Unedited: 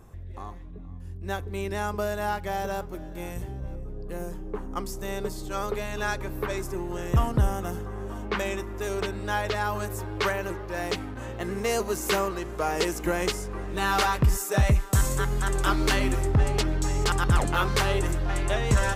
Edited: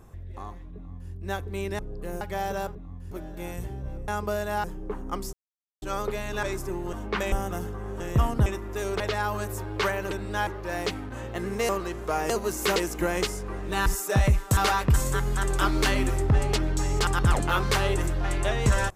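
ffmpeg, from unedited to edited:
-filter_complex "[0:a]asplit=23[s0][s1][s2][s3][s4][s5][s6][s7][s8][s9][s10][s11][s12][s13][s14][s15][s16][s17][s18][s19][s20][s21][s22];[s0]atrim=end=1.792[s23];[s1]atrim=start=3.858:end=4.282[s24];[s2]atrim=start=2.348:end=2.892[s25];[s3]atrim=start=0.748:end=1.112[s26];[s4]atrim=start=2.888:end=3.862[s27];[s5]atrim=start=1.788:end=2.352[s28];[s6]atrim=start=4.278:end=4.97,asetpts=PTS-STARTPTS,afade=t=out:st=0.688:d=0.004:c=hsin[s29];[s7]atrim=start=4.97:end=5.46,asetpts=PTS-STARTPTS,volume=0[s30];[s8]atrim=start=5.46:end=6.072,asetpts=PTS-STARTPTS,afade=t=in:d=0.004:c=hsin[s31];[s9]atrim=start=6.478:end=6.982[s32];[s10]atrim=start=8.118:end=8.512[s33];[s11]atrim=start=7.438:end=8.122[s34];[s12]atrim=start=6.978:end=7.442[s35];[s13]atrim=start=8.508:end=9.052[s36];[s14]atrim=start=9.408:end=10.522[s37];[s15]atrim=start=9.048:end=9.412[s38];[s16]atrim=start=10.518:end=11.742[s39];[s17]atrim=start=12.198:end=12.812[s40];[s18]atrim=start=11.738:end=12.202[s41];[s19]atrim=start=12.808:end=13.912[s42];[s20]atrim=start=14.278:end=14.992[s43];[s21]atrim=start=13.908:end=14.282[s44];[s22]atrim=start=14.988[s45];[s23][s24]acrossfade=d=0.004:c1=hsin:c2=hsin[s46];[s46][s25]acrossfade=d=0.004:c1=hsin:c2=hsin[s47];[s47][s26]acrossfade=d=0.004:c1=hsin:c2=hsin[s48];[s48][s27]acrossfade=d=0.004:c1=hsin:c2=hsin[s49];[s49][s28]acrossfade=d=0.004:c1=hsin:c2=hsin[s50];[s29][s30][s31]concat=n=3:v=0:a=1[s51];[s50][s51]acrossfade=d=0.004:c1=hsin:c2=hsin[s52];[s52][s32]acrossfade=d=0.004:c1=hsin:c2=hsin[s53];[s53][s33]acrossfade=d=0.004:c1=hsin:c2=hsin[s54];[s54][s34]acrossfade=d=0.004:c1=hsin:c2=hsin[s55];[s55][s35]acrossfade=d=0.004:c1=hsin:c2=hsin[s56];[s56][s36]acrossfade=d=0.004:c1=hsin:c2=hsin[s57];[s57][s37]acrossfade=d=0.004:c1=hsin:c2=hsin[s58];[s58][s38]acrossfade=d=0.004:c1=hsin:c2=hsin[s59];[s59][s39]acrossfade=d=0.004:c1=hsin:c2=hsin[s60];[s60][s40]acrossfade=d=0.004:c1=hsin:c2=hsin[s61];[s61][s41]acrossfade=d=0.004:c1=hsin:c2=hsin[s62];[s62][s42]acrossfade=d=0.004:c1=hsin:c2=hsin[s63];[s63][s43]acrossfade=d=0.004:c1=hsin:c2=hsin[s64];[s64][s44]acrossfade=d=0.004:c1=hsin:c2=hsin[s65];[s65][s45]acrossfade=d=0.004:c1=hsin:c2=hsin"

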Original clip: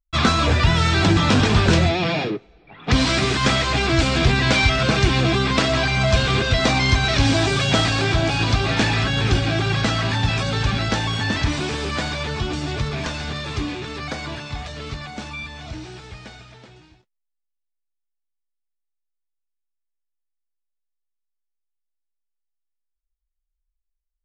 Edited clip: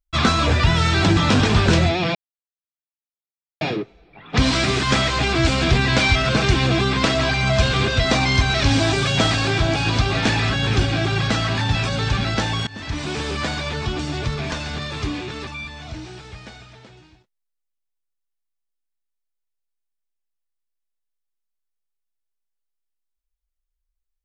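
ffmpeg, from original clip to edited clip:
-filter_complex "[0:a]asplit=4[s0][s1][s2][s3];[s0]atrim=end=2.15,asetpts=PTS-STARTPTS,afade=t=out:st=2.146:d=0.004:c=hsin,apad=pad_dur=1.46[s4];[s1]atrim=start=2.15:end=11.21,asetpts=PTS-STARTPTS,afade=t=in:d=0.004:c=hsin,afade=t=out:st=9.056:d=0.004:c=hsin:silence=0.0794328[s5];[s2]atrim=start=11.21:end=14.012,asetpts=PTS-STARTPTS,afade=t=in:d=0.54:silence=0.0794328[s6];[s3]atrim=start=15.258[s7];[s4][s5][s6]concat=n=3:v=0:a=1[s8];[s8][s7]acrossfade=d=0.004:c1=hsin:c2=hsin"

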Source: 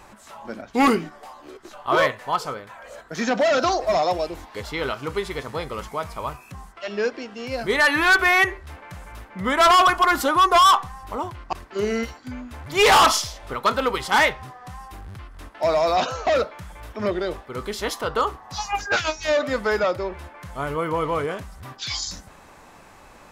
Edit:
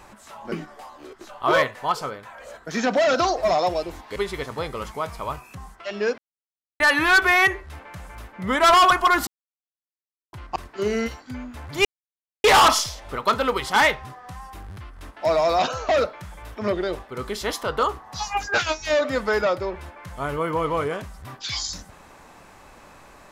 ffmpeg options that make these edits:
-filter_complex "[0:a]asplit=8[s0][s1][s2][s3][s4][s5][s6][s7];[s0]atrim=end=0.522[s8];[s1]atrim=start=0.958:end=4.602[s9];[s2]atrim=start=5.128:end=7.15,asetpts=PTS-STARTPTS,afade=t=out:st=2.018:d=0.004:c=hsin[s10];[s3]atrim=start=7.15:end=7.77,asetpts=PTS-STARTPTS,volume=0[s11];[s4]atrim=start=7.77:end=10.24,asetpts=PTS-STARTPTS,afade=t=in:d=0.004:c=hsin,afade=t=out:st=2.466:d=0.004:c=hsin[s12];[s5]atrim=start=10.24:end=11.3,asetpts=PTS-STARTPTS,volume=0[s13];[s6]atrim=start=11.3:end=12.82,asetpts=PTS-STARTPTS,afade=t=in:d=0.004:c=hsin,afade=t=out:st=1.516:d=0.004:c=hsin,apad=pad_dur=0.59[s14];[s7]atrim=start=12.82,asetpts=PTS-STARTPTS,afade=t=in:d=0.004:c=hsin[s15];[s8][s9]acrossfade=d=0.004:c1=hsin:c2=hsin[s16];[s10][s11][s12][s13][s14][s15]concat=n=6:v=0:a=1[s17];[s16][s17]acrossfade=d=0.004:c1=hsin:c2=hsin"

